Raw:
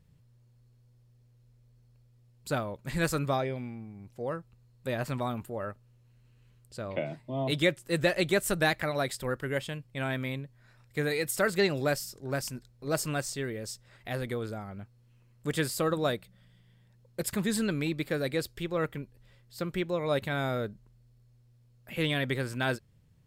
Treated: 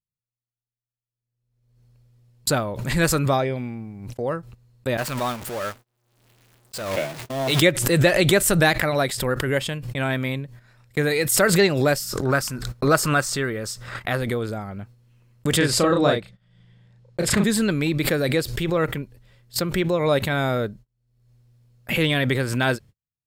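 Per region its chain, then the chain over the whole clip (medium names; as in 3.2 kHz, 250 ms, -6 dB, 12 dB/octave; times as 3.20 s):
4.97–7.62 s: jump at every zero crossing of -33 dBFS + bass shelf 460 Hz -9 dB + expander -34 dBFS
12.03–14.17 s: peaking EQ 1.3 kHz +10 dB 0.67 oct + upward compressor, threshold -48 dBFS
15.57–17.44 s: distance through air 68 m + doubling 35 ms -2 dB
whole clip: gate -49 dBFS, range -43 dB; swell ahead of each attack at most 53 dB/s; trim +8 dB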